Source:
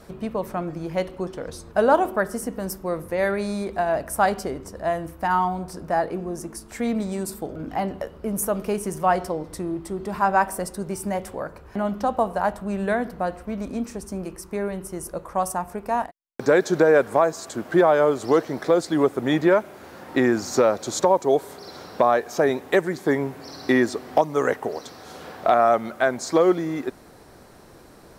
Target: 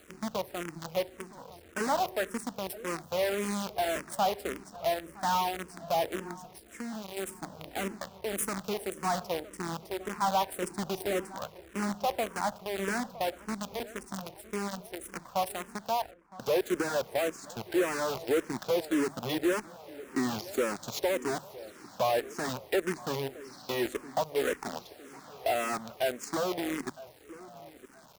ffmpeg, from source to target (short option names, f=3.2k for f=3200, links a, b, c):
-filter_complex "[0:a]asettb=1/sr,asplit=3[a][b][c];[a]atrim=end=1.044[d];[b]atrim=start=1.04:end=1.66,asetpts=PTS-STARTPTS,afade=t=in:d=0.004:c=qsin,afade=t=out:st=0.616:d=0.004:c=qsin,acrossover=split=150|1000|3000[e][f][g][h];[e]acompressor=threshold=-45dB:ratio=4[i];[f]acompressor=threshold=-31dB:ratio=4[j];[g]acompressor=threshold=-53dB:ratio=4[k];[h]acompressor=threshold=-53dB:ratio=4[l];[i][j][k][l]amix=inputs=4:normalize=0[m];[c]atrim=start=1.656[n];[d][m]acrossfade=d=0.004:c1=hsin:c2=qsin[o];[o][n]acrossfade=d=0.004:c1=qsin:c2=hsin,asettb=1/sr,asplit=3[p][q][r];[p]atrim=end=10.624[s];[q]atrim=start=10.62:end=11.32,asetpts=PTS-STARTPTS,afade=t=in:d=0.004:c=qsin,afade=t=out:st=0.696:d=0.004:c=qsin,equalizer=f=350:t=o:w=0.95:g=10.5[t];[r]atrim=start=11.316[u];[s][t]acrossfade=d=0.004:c1=hsin:c2=qsin[v];[v][u]acrossfade=d=0.004:c1=qsin:c2=hsin,asoftclip=type=tanh:threshold=-16dB,acrusher=bits=5:dc=4:mix=0:aa=0.000001,asplit=2[w][x];[x]adelay=962,lowpass=f=2.1k:p=1,volume=-18dB,asplit=2[y][z];[z]adelay=962,lowpass=f=2.1k:p=1,volume=0.52,asplit=2[aa][ab];[ab]adelay=962,lowpass=f=2.1k:p=1,volume=0.52,asplit=2[ac][ad];[ad]adelay=962,lowpass=f=2.1k:p=1,volume=0.52[ae];[w][y][aa][ac][ae]amix=inputs=5:normalize=0,asettb=1/sr,asplit=3[af][ag][ah];[af]atrim=end=6.334[ai];[ag]atrim=start=6.33:end=7.17,asetpts=PTS-STARTPTS,afade=t=in:d=0.004:c=qsin,afade=t=out:st=0.836:d=0.004:c=qsin,acompressor=threshold=-35dB:ratio=2[aj];[ah]atrim=start=7.166[ak];[ai][aj]acrossfade=d=0.004:c1=hsin:c2=qsin[al];[al][ak]acrossfade=d=0.004:c1=qsin:c2=hsin,highpass=f=83:p=1,bandreject=f=50:t=h:w=6,bandreject=f=100:t=h:w=6,bandreject=f=150:t=h:w=6,asplit=2[am][an];[an]afreqshift=-1.8[ao];[am][ao]amix=inputs=2:normalize=1,volume=-4dB"